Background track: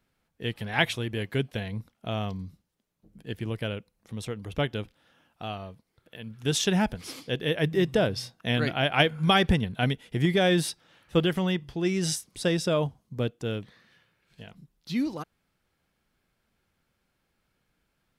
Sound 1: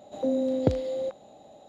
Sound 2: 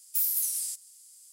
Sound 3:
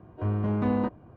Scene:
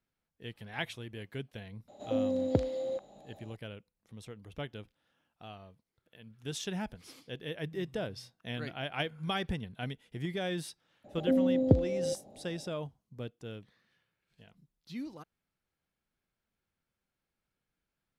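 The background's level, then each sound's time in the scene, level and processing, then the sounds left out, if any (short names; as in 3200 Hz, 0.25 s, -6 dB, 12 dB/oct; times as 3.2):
background track -12.5 dB
1.88 add 1 -4.5 dB
11.04 add 1 -6.5 dB + tilt shelf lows +9.5 dB, about 810 Hz
not used: 2, 3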